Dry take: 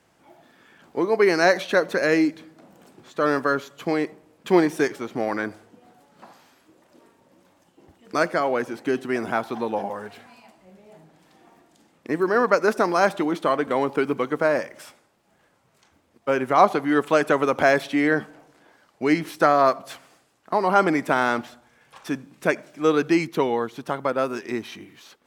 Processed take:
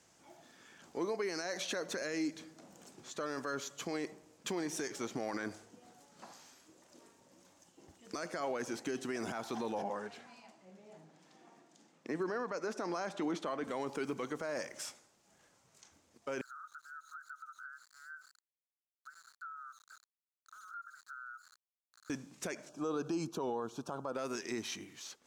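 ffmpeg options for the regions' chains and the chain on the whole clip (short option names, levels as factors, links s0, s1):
-filter_complex "[0:a]asettb=1/sr,asplit=3[s0][s1][s2];[s0]atrim=end=9.824[s3];[s1]atrim=start=9.82:end=13.64,asetpts=PTS-STARTPTS,afade=t=in:d=0.004:c=qsin,afade=t=out:st=3.816:d=0.004:c=qsin,highpass=f=130:w=0.5412,highpass=f=130:w=1.3066,aemphasis=mode=reproduction:type=50kf[s4];[s2]atrim=start=13.636[s5];[s3][s4]acrossfade=d=0.004:c1=hsin:c2=qsin[s6];[s6][s5]acrossfade=d=0.004:c1=qsin:c2=hsin,asettb=1/sr,asplit=3[s7][s8][s9];[s7]atrim=end=16.414[s10];[s8]atrim=start=16.41:end=22.1,asetpts=PTS-STARTPTS,afade=t=in:d=0.004:c=qsin,afade=t=out:st=5.686:d=0.004:c=qsin,asuperpass=centerf=1400:order=8:qfactor=4.6,aeval=exprs='val(0)*gte(abs(val(0)),0.00211)':c=same,acompressor=threshold=0.00631:ratio=3:attack=3.2:release=140:knee=1:detection=peak[s11];[s9]atrim=start=22.096[s12];[s10][s11]acrossfade=d=0.004:c1=hsin:c2=qsin[s13];[s13][s12]acrossfade=d=0.004:c1=qsin:c2=hsin,asettb=1/sr,asplit=3[s14][s15][s16];[s14]atrim=end=22.694[s17];[s15]atrim=start=22.69:end=24.15,asetpts=PTS-STARTPTS,afade=t=in:d=0.004:c=qsin,afade=t=out:st=1.456:d=0.004:c=qsin,highshelf=f=1500:t=q:w=1.5:g=-7,acompressor=threshold=0.0562:ratio=2:attack=3.2:release=140:knee=1:detection=peak,asuperstop=centerf=2000:order=4:qfactor=2.9[s18];[s16]atrim=start=24.146[s19];[s17][s18]acrossfade=d=0.004:c1=hsin:c2=qsin[s20];[s20][s19]acrossfade=d=0.004:c1=qsin:c2=hsin,equalizer=f=6500:w=1.1:g=13.5,acompressor=threshold=0.0794:ratio=6,alimiter=limit=0.0891:level=0:latency=1:release=16,volume=0.447"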